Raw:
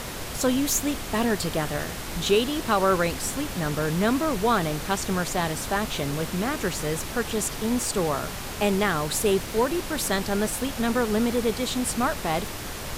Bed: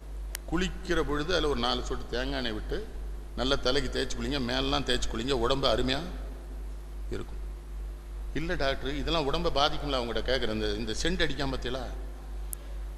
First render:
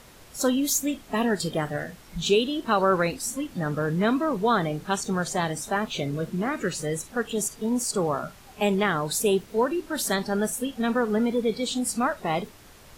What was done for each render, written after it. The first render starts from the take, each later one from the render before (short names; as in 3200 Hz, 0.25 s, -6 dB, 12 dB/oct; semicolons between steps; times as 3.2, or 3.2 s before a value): noise print and reduce 16 dB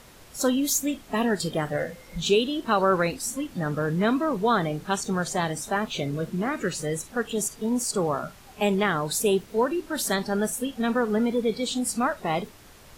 1.72–2.2 small resonant body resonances 520/2100 Hz, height 17 dB, ringing for 95 ms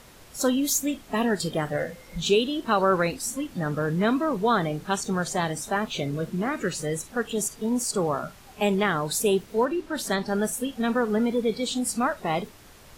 9.65–10.28 high shelf 7100 Hz -9 dB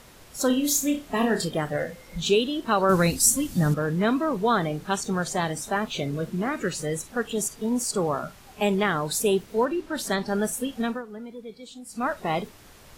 0.47–1.45 flutter echo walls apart 5.3 m, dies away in 0.28 s; 2.89–3.74 tone controls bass +10 dB, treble +13 dB; 10.81–12.11 dip -15 dB, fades 0.22 s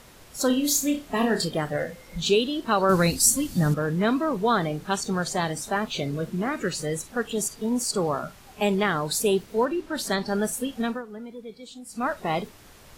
dynamic EQ 4500 Hz, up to +6 dB, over -52 dBFS, Q 5.7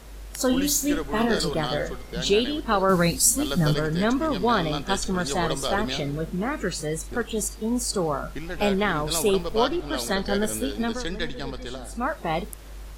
add bed -2.5 dB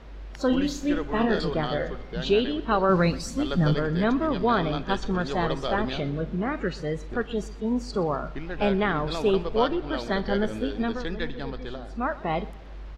air absorption 230 m; feedback echo 0.124 s, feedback 46%, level -20 dB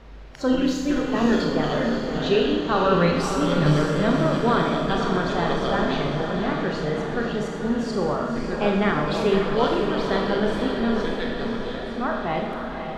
diffused feedback echo 0.541 s, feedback 60%, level -6 dB; Schroeder reverb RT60 1.1 s, combs from 27 ms, DRR 1.5 dB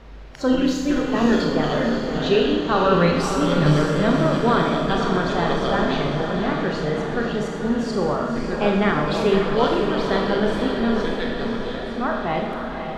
gain +2 dB